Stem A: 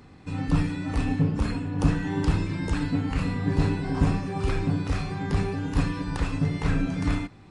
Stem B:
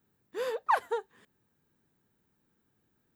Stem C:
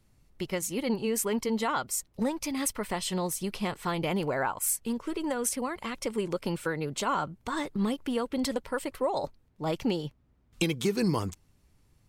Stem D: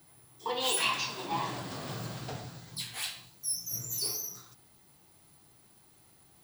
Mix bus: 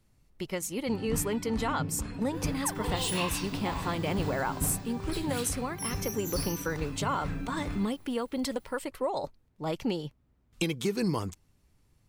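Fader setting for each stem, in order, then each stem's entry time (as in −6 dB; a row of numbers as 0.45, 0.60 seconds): −11.0, −12.0, −2.0, −4.5 decibels; 0.60, 1.95, 0.00, 2.35 seconds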